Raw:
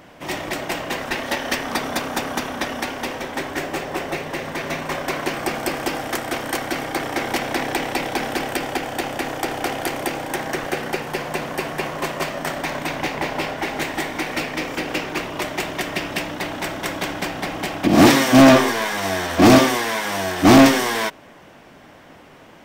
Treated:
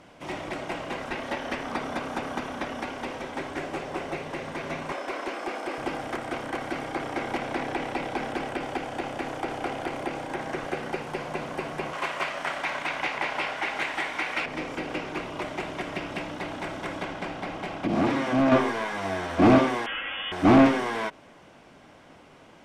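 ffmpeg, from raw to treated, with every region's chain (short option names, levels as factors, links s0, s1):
-filter_complex "[0:a]asettb=1/sr,asplit=3[s0][s1][s2];[s0]atrim=end=4.924[s3];[s1]atrim=start=4.92:end=5.78,asetpts=PTS-STARTPTS,afade=t=in:d=0.004:c=qsin,afade=t=out:st=0.856:d=0.004:c=qsin,aeval=exprs='val(0)+0.00447*sin(2*PI*5200*n/s)':c=same,highpass=f=280:w=0.5412,highpass=f=280:w=1.3066,volume=8.91,asoftclip=hard,volume=0.112[s4];[s2]atrim=start=5.776[s5];[s3][s4]acrossfade=d=0.004:c1=hsin:c2=qsin[s6];[s6][s5]acrossfade=d=0.004:c1=qsin:c2=hsin,asettb=1/sr,asplit=3[s7][s8][s9];[s7]atrim=end=11.934[s10];[s8]atrim=start=11.93:end=14.46,asetpts=PTS-STARTPTS,afade=t=in:d=0.004:c=qsin,afade=t=out:st=2.526:d=0.004:c=qsin,tiltshelf=f=680:g=-10,acrusher=bits=8:mode=log:mix=0:aa=0.000001[s11];[s9]atrim=start=14.456[s12];[s10][s11]acrossfade=d=0.004:c1=hsin:c2=qsin[s13];[s13][s12]acrossfade=d=0.004:c1=qsin:c2=hsin,asettb=1/sr,asplit=3[s14][s15][s16];[s14]atrim=end=17.034[s17];[s15]atrim=start=17.03:end=18.52,asetpts=PTS-STARTPTS,afade=t=in:d=0.004:c=qsin,afade=t=out:st=1.486:d=0.004:c=qsin,highshelf=f=5800:g=-8.5,bandreject=f=50:t=h:w=6,bandreject=f=100:t=h:w=6,bandreject=f=150:t=h:w=6,bandreject=f=200:t=h:w=6,bandreject=f=250:t=h:w=6,bandreject=f=300:t=h:w=6,bandreject=f=350:t=h:w=6,bandreject=f=400:t=h:w=6,bandreject=f=450:t=h:w=6,acompressor=threshold=0.158:ratio=2.5:attack=3.2:release=140:knee=1:detection=peak[s18];[s16]atrim=start=18.516[s19];[s17][s18]acrossfade=d=0.004:c1=hsin:c2=qsin[s20];[s20][s19]acrossfade=d=0.004:c1=qsin:c2=hsin,asettb=1/sr,asplit=3[s21][s22][s23];[s21]atrim=end=19.864[s24];[s22]atrim=start=19.86:end=20.32,asetpts=PTS-STARTPTS,afade=t=in:d=0.004:c=qsin,afade=t=out:st=0.456:d=0.004:c=qsin,lowpass=f=3100:t=q:w=0.5098,lowpass=f=3100:t=q:w=0.6013,lowpass=f=3100:t=q:w=0.9,lowpass=f=3100:t=q:w=2.563,afreqshift=-3600,aecho=1:1:3.7:0.57,atrim=end_sample=20286[s25];[s23]atrim=start=20.316[s26];[s24][s25]acrossfade=d=0.004:c1=hsin:c2=qsin[s27];[s27][s26]acrossfade=d=0.004:c1=qsin:c2=hsin,bandreject=f=1800:w=13,acrossover=split=2700[s28][s29];[s29]acompressor=threshold=0.00891:ratio=4:attack=1:release=60[s30];[s28][s30]amix=inputs=2:normalize=0,lowpass=f=11000:w=0.5412,lowpass=f=11000:w=1.3066,volume=0.501"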